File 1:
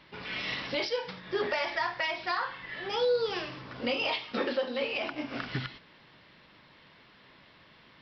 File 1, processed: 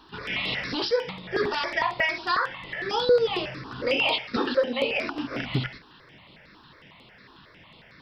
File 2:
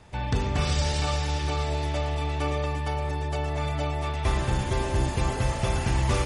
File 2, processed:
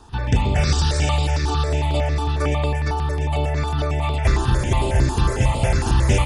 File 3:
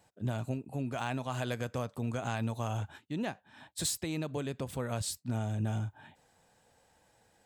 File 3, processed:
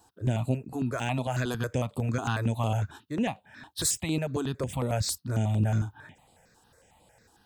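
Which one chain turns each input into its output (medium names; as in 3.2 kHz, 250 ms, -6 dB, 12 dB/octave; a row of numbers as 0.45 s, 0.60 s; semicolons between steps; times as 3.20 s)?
stepped phaser 11 Hz 570–5900 Hz; trim +8.5 dB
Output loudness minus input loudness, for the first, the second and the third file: +5.5 LU, +6.5 LU, +6.0 LU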